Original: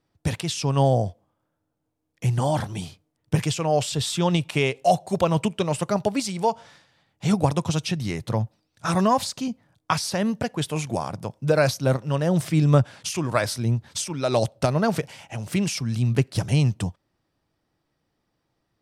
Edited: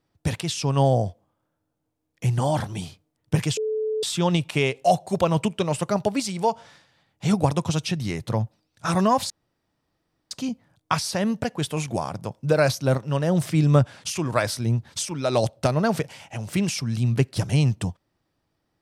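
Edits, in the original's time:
3.57–4.03 bleep 434 Hz -22.5 dBFS
9.3 insert room tone 1.01 s

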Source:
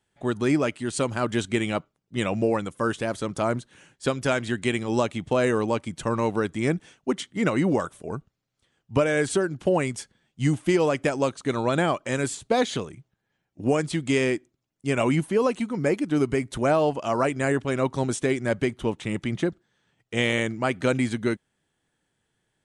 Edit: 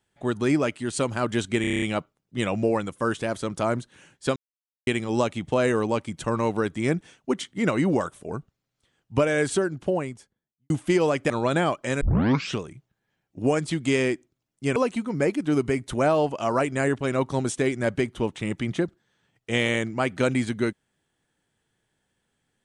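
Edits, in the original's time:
1.61 stutter 0.03 s, 8 plays
4.15–4.66 mute
9.3–10.49 studio fade out
11.09–11.52 cut
12.23 tape start 0.59 s
14.98–15.4 cut

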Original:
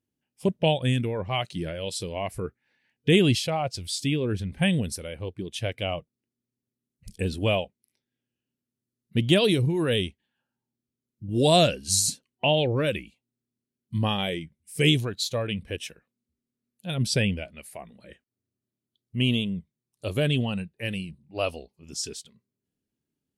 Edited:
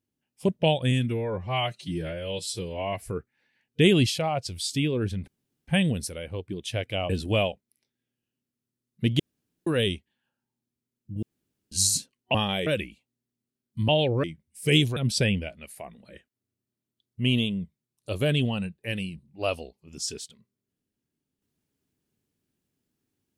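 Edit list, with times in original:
0.91–2.34 stretch 1.5×
4.56 insert room tone 0.40 s
5.98–7.22 cut
9.32–9.79 room tone
11.35–11.84 room tone
12.47–12.82 swap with 14.04–14.36
15.09–16.92 cut

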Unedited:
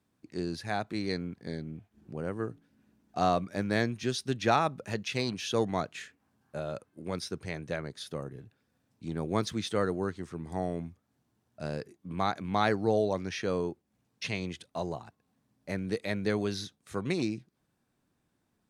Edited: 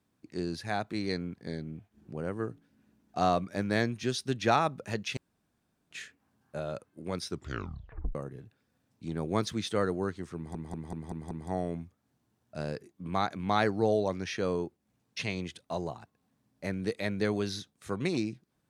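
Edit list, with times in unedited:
5.17–5.91 room tone
7.28 tape stop 0.87 s
10.36 stutter 0.19 s, 6 plays

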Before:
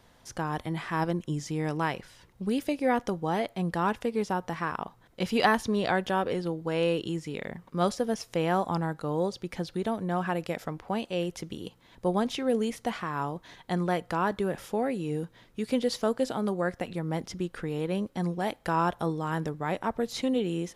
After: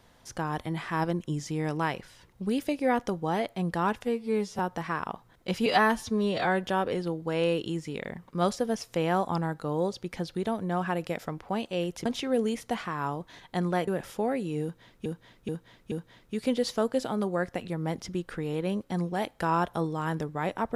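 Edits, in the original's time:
4.03–4.31 stretch 2×
5.38–6.03 stretch 1.5×
11.45–12.21 cut
14.03–14.42 cut
15.17–15.6 loop, 4 plays

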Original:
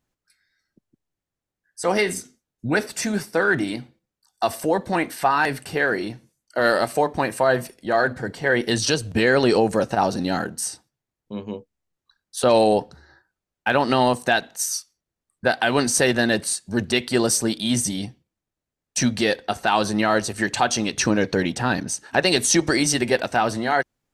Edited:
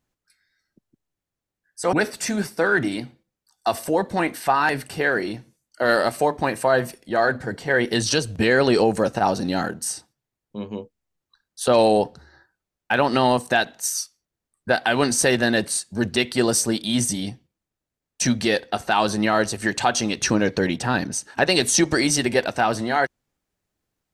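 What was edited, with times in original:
1.93–2.69 cut

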